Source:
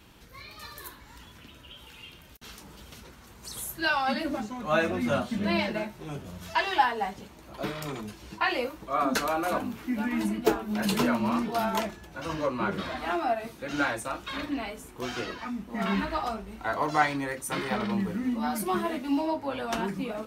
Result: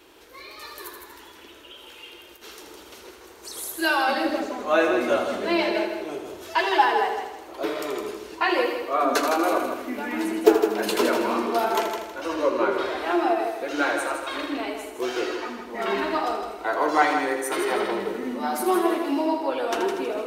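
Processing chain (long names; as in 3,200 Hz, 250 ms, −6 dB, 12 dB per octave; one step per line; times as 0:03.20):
low shelf with overshoot 250 Hz −13 dB, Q 3
echo machine with several playback heads 80 ms, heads first and second, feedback 43%, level −8.5 dB
level +2.5 dB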